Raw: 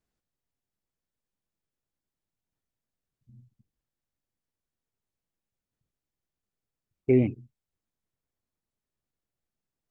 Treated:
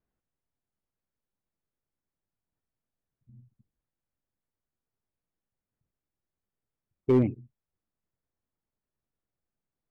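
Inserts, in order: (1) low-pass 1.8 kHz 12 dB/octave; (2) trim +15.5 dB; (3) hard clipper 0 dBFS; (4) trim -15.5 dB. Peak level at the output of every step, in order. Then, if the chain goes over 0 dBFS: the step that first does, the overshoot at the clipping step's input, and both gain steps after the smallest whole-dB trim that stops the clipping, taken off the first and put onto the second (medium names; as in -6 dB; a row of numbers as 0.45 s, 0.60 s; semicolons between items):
-11.0 dBFS, +4.5 dBFS, 0.0 dBFS, -15.5 dBFS; step 2, 4.5 dB; step 2 +10.5 dB, step 4 -10.5 dB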